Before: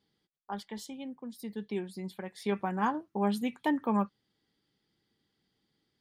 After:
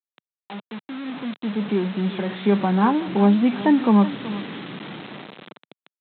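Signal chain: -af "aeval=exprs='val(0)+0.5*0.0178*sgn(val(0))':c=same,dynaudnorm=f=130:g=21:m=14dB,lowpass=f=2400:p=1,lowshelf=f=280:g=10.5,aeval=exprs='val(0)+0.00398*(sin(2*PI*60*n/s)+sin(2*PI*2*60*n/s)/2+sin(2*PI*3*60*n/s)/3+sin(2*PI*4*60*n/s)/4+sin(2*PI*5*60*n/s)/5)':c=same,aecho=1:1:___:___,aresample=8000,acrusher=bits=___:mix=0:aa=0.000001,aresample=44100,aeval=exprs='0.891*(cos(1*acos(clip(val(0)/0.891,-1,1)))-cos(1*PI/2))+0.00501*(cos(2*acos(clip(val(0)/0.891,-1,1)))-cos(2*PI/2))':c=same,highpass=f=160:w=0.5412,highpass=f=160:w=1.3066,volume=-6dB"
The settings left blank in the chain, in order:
375, 0.168, 4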